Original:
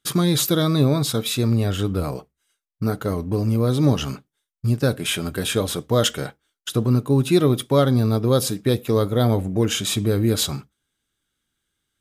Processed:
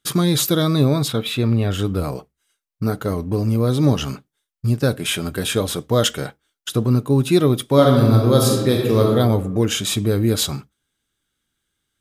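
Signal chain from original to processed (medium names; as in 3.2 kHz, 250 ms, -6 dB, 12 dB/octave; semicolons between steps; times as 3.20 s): 1.08–1.71 s: resonant high shelf 4.2 kHz -8.5 dB, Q 1.5; 7.64–9.11 s: reverb throw, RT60 1.2 s, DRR -0.5 dB; trim +1.5 dB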